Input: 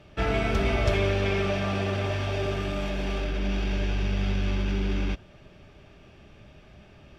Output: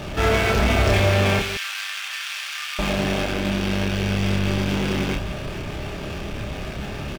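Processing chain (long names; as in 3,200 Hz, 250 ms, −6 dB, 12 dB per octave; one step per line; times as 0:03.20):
power curve on the samples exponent 0.5
0:01.39–0:02.79: Bessel high-pass filter 2,000 Hz, order 6
loudspeakers that aren't time-aligned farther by 10 metres −2 dB, 61 metres −11 dB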